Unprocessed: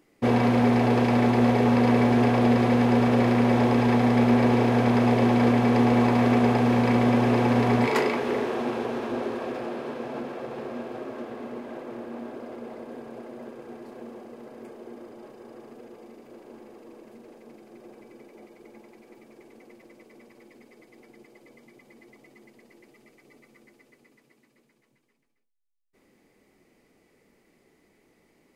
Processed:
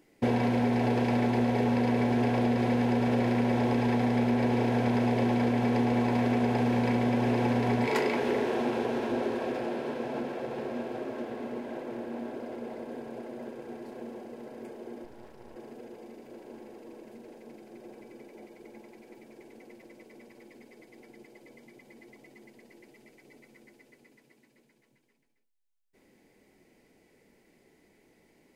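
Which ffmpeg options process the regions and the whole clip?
ffmpeg -i in.wav -filter_complex "[0:a]asettb=1/sr,asplit=3[link_01][link_02][link_03];[link_01]atrim=end=15.044[link_04];[link_02]atrim=start=15.04:end=15.56,asetpts=PTS-STARTPTS,afade=type=in:duration=0.004:curve=qsin,afade=type=out:start_time=0.516:duration=0.004:curve=qsin,bandreject=frequency=100.2:width_type=h:width=4,bandreject=frequency=200.4:width_type=h:width=4,bandreject=frequency=300.6:width_type=h:width=4,bandreject=frequency=400.8:width_type=h:width=4,bandreject=frequency=501:width_type=h:width=4,bandreject=frequency=601.2:width_type=h:width=4,bandreject=frequency=701.4:width_type=h:width=4,bandreject=frequency=801.6:width_type=h:width=4,bandreject=frequency=901.8:width_type=h:width=4,bandreject=frequency=1002:width_type=h:width=4,bandreject=frequency=1102.2:width_type=h:width=4,bandreject=frequency=1202.4:width_type=h:width=4,bandreject=frequency=1302.6:width_type=h:width=4,bandreject=frequency=1402.8:width_type=h:width=4,bandreject=frequency=1503:width_type=h:width=4,bandreject=frequency=1603.2:width_type=h:width=4,bandreject=frequency=1703.4:width_type=h:width=4,bandreject=frequency=1803.6:width_type=h:width=4,bandreject=frequency=1903.8:width_type=h:width=4,bandreject=frequency=2004:width_type=h:width=4,bandreject=frequency=2104.2:width_type=h:width=4,bandreject=frequency=2204.4:width_type=h:width=4,bandreject=frequency=2304.6:width_type=h:width=4,bandreject=frequency=2404.8:width_type=h:width=4,bandreject=frequency=2505:width_type=h:width=4,bandreject=frequency=2605.2:width_type=h:width=4,bandreject=frequency=2705.4:width_type=h:width=4,bandreject=frequency=2805.6:width_type=h:width=4,bandreject=frequency=2905.8:width_type=h:width=4,aeval=exprs='max(val(0),0)':channel_layout=same[link_05];[link_03]atrim=start=15.556[link_06];[link_04][link_05]acrossfade=duration=0.004:curve1=hsin:curve2=qsin[link_07];[link_07][link_06]acrossfade=duration=0.004:curve1=qsin:curve2=hsin,bandreject=frequency=1200:width=5.2,acompressor=threshold=-23dB:ratio=6" out.wav

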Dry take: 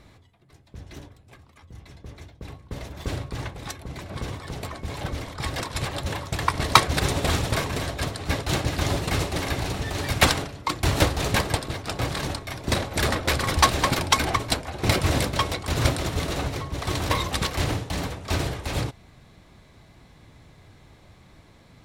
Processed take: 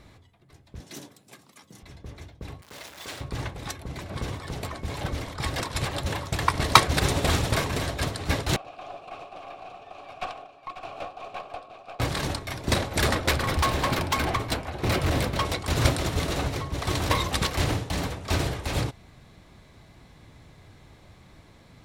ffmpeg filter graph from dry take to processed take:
ffmpeg -i in.wav -filter_complex "[0:a]asettb=1/sr,asplit=3[link_01][link_02][link_03];[link_01]atrim=end=0.804[link_04];[link_02]atrim=start=0.8:end=1.83,asetpts=PTS-STARTPTS,afade=type=in:duration=0.004:curve=qsin,afade=type=out:start_time=1.026:duration=0.004:curve=qsin,highpass=frequency=170:width=0.5412,highpass=frequency=170:width=1.3066,bass=frequency=250:gain=4,treble=frequency=4000:gain=11[link_05];[link_03]atrim=start=1.826[link_06];[link_04][link_05]acrossfade=duration=0.004:curve1=hsin:curve2=qsin[link_07];[link_07][link_06]acrossfade=duration=0.004:curve1=qsin:curve2=hsin,asettb=1/sr,asplit=3[link_08][link_09][link_10];[link_08]atrim=end=2.624[link_11];[link_09]atrim=start=2.62:end=3.21,asetpts=PTS-STARTPTS,afade=type=in:duration=0.004:curve=qsin,afade=type=out:start_time=0.586:duration=0.004:curve=qsin,aeval=exprs='val(0)+0.5*0.0119*sgn(val(0))':channel_layout=same,highpass=frequency=1300:poles=1[link_12];[link_10]atrim=start=3.206[link_13];[link_11][link_12]acrossfade=duration=0.004:curve1=hsin:curve2=qsin[link_14];[link_14][link_13]acrossfade=duration=0.004:curve1=qsin:curve2=hsin,asettb=1/sr,asplit=3[link_15][link_16][link_17];[link_15]atrim=end=8.564[link_18];[link_16]atrim=start=8.56:end=12,asetpts=PTS-STARTPTS,afade=type=in:duration=0.004:curve=qsin,afade=type=out:start_time=3.436:duration=0.004:curve=qsin,asplit=3[link_19][link_20][link_21];[link_19]bandpass=frequency=730:width_type=q:width=8,volume=0dB[link_22];[link_20]bandpass=frequency=1090:width_type=q:width=8,volume=-6dB[link_23];[link_21]bandpass=frequency=2440:width_type=q:width=8,volume=-9dB[link_24];[link_22][link_23][link_24]amix=inputs=3:normalize=0,aeval=exprs='(tanh(15.8*val(0)+0.45)-tanh(0.45))/15.8':channel_layout=same,aecho=1:1:543:0.316,atrim=end_sample=151704[link_25];[link_17]atrim=start=11.996[link_26];[link_18][link_25]acrossfade=duration=0.004:curve1=hsin:curve2=qsin[link_27];[link_27][link_26]acrossfade=duration=0.004:curve1=qsin:curve2=hsin,asettb=1/sr,asplit=3[link_28][link_29][link_30];[link_28]atrim=end=13.314[link_31];[link_29]atrim=start=13.31:end=15.45,asetpts=PTS-STARTPTS,afade=type=in:duration=0.004:curve=qsin,afade=type=out:start_time=2.136:duration=0.004:curve=qsin,equalizer=frequency=7800:width_type=o:width=1.8:gain=-6,bandreject=frequency=98.14:width_type=h:width=4,bandreject=frequency=196.28:width_type=h:width=4,bandreject=frequency=294.42:width_type=h:width=4,bandreject=frequency=392.56:width_type=h:width=4,bandreject=frequency=490.7:width_type=h:width=4,bandreject=frequency=588.84:width_type=h:width=4,bandreject=frequency=686.98:width_type=h:width=4,bandreject=frequency=785.12:width_type=h:width=4,bandreject=frequency=883.26:width_type=h:width=4,bandreject=frequency=981.4:width_type=h:width=4,bandreject=frequency=1079.54:width_type=h:width=4,bandreject=frequency=1177.68:width_type=h:width=4,bandreject=frequency=1275.82:width_type=h:width=4,bandreject=frequency=1373.96:width_type=h:width=4,bandreject=frequency=1472.1:width_type=h:width=4,bandreject=frequency=1570.24:width_type=h:width=4,bandreject=frequency=1668.38:width_type=h:width=4,bandreject=frequency=1766.52:width_type=h:width=4,bandreject=frequency=1864.66:width_type=h:width=4,bandreject=frequency=1962.8:width_type=h:width=4,bandreject=frequency=2060.94:width_type=h:width=4,bandreject=frequency=2159.08:width_type=h:width=4,bandreject=frequency=2257.22:width_type=h:width=4,bandreject=frequency=2355.36:width_type=h:width=4,bandreject=frequency=2453.5:width_type=h:width=4,bandreject=frequency=2551.64:width_type=h:width=4,bandreject=frequency=2649.78:width_type=h:width=4,bandreject=frequency=2747.92:width_type=h:width=4,bandreject=frequency=2846.06:width_type=h:width=4,bandreject=frequency=2944.2:width_type=h:width=4,bandreject=frequency=3042.34:width_type=h:width=4,bandreject=frequency=3140.48:width_type=h:width=4,asoftclip=type=hard:threshold=-19.5dB[link_32];[link_30]atrim=start=15.446[link_33];[link_31][link_32]acrossfade=duration=0.004:curve1=hsin:curve2=qsin[link_34];[link_34][link_33]acrossfade=duration=0.004:curve1=qsin:curve2=hsin" out.wav

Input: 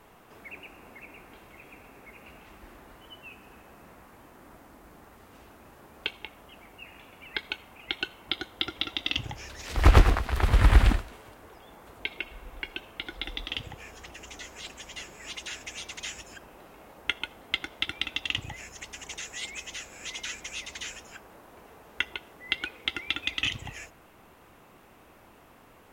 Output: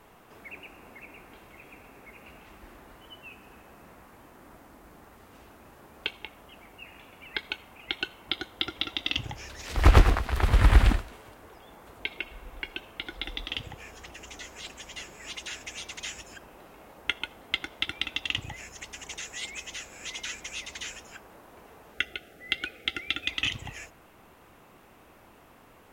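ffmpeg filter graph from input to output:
ffmpeg -i in.wav -filter_complex "[0:a]asettb=1/sr,asplit=3[link_01][link_02][link_03];[link_01]atrim=end=21.944[link_04];[link_02]atrim=start=21.94:end=23.28,asetpts=PTS-STARTPTS,afade=type=in:duration=0.004:curve=qsin,afade=type=out:start_time=1.336:duration=0.004:curve=qsin,asoftclip=type=hard:threshold=-8.5dB,asuperstop=centerf=990:order=8:qfactor=2.4[link_05];[link_03]atrim=start=23.276[link_06];[link_04][link_05]acrossfade=duration=0.004:curve1=hsin:curve2=qsin[link_07];[link_07][link_06]acrossfade=duration=0.004:curve1=qsin:curve2=hsin" out.wav

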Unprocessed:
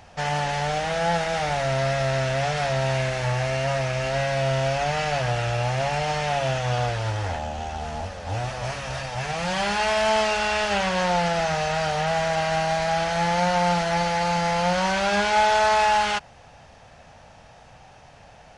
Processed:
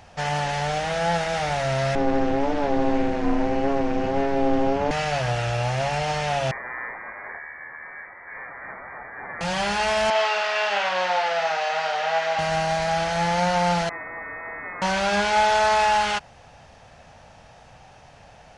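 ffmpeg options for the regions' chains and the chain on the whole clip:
ffmpeg -i in.wav -filter_complex "[0:a]asettb=1/sr,asplit=3[link_01][link_02][link_03];[link_01]atrim=end=1.954[link_04];[link_02]atrim=start=1.95:end=4.91,asetpts=PTS-STARTPTS,afade=type=in:duration=0.004:curve=qsin,afade=type=out:start_time=2.956:duration=0.004:curve=qsin,acrossover=split=7400[link_05][link_06];[link_06]acompressor=threshold=-60dB:ratio=4:attack=1:release=60[link_07];[link_05][link_07]amix=inputs=2:normalize=0,aeval=exprs='val(0)*sin(2*PI*140*n/s)':channel_layout=same,tiltshelf=frequency=1200:gain=8.5[link_08];[link_03]atrim=start=4.906[link_09];[link_04][link_08]acrossfade=duration=0.004:curve1=hsin:curve2=qsin[link_10];[link_10][link_09]acrossfade=duration=0.004:curve1=qsin:curve2=hsin,asettb=1/sr,asplit=3[link_11][link_12][link_13];[link_11]atrim=end=6.514[link_14];[link_12]atrim=start=6.51:end=9.41,asetpts=PTS-STARTPTS,afade=type=in:duration=0.004:curve=qsin,afade=type=out:start_time=2.896:duration=0.004:curve=qsin,highpass=frequency=250:width=0.5412,highpass=frequency=250:width=1.3066,equalizer=frequency=640:width=1:gain=-8,lowpass=frequency=2100:width_type=q:width=0.5098,lowpass=frequency=2100:width_type=q:width=0.6013,lowpass=frequency=2100:width_type=q:width=0.9,lowpass=frequency=2100:width_type=q:width=2.563,afreqshift=-2500[link_15];[link_13]atrim=start=9.406[link_16];[link_14][link_15]acrossfade=duration=0.004:curve1=hsin:curve2=qsin[link_17];[link_17][link_16]acrossfade=duration=0.004:curve1=qsin:curve2=hsin,asettb=1/sr,asplit=3[link_18][link_19][link_20];[link_18]atrim=end=10.104[link_21];[link_19]atrim=start=10.1:end=12.39,asetpts=PTS-STARTPTS,afade=type=in:duration=0.004:curve=qsin,afade=type=out:start_time=2.286:duration=0.004:curve=qsin,highpass=570,lowpass=4400,asplit=2[link_22][link_23];[link_23]adelay=49,volume=-3.5dB[link_24];[link_22][link_24]amix=inputs=2:normalize=0,atrim=end_sample=100989[link_25];[link_20]atrim=start=12.386[link_26];[link_21][link_25]acrossfade=duration=0.004:curve1=hsin:curve2=qsin[link_27];[link_27][link_26]acrossfade=duration=0.004:curve1=qsin:curve2=hsin,asettb=1/sr,asplit=3[link_28][link_29][link_30];[link_28]atrim=end=13.894[link_31];[link_29]atrim=start=13.89:end=14.82,asetpts=PTS-STARTPTS,afade=type=in:duration=0.004:curve=qsin,afade=type=out:start_time=0.926:duration=0.004:curve=qsin,acontrast=76,aderivative,lowpass=frequency=2300:width_type=q:width=0.5098,lowpass=frequency=2300:width_type=q:width=0.6013,lowpass=frequency=2300:width_type=q:width=0.9,lowpass=frequency=2300:width_type=q:width=2.563,afreqshift=-2700[link_32];[link_30]atrim=start=14.816[link_33];[link_31][link_32]acrossfade=duration=0.004:curve1=hsin:curve2=qsin[link_34];[link_34][link_33]acrossfade=duration=0.004:curve1=qsin:curve2=hsin" out.wav

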